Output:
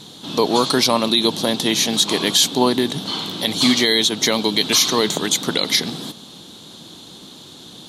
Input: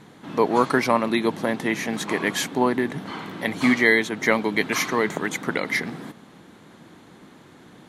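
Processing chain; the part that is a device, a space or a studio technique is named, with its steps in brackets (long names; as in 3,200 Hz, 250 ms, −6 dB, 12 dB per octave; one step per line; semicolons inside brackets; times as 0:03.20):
over-bright horn tweeter (high shelf with overshoot 2,700 Hz +10.5 dB, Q 3; brickwall limiter −9 dBFS, peak gain reduction 7 dB)
level +4.5 dB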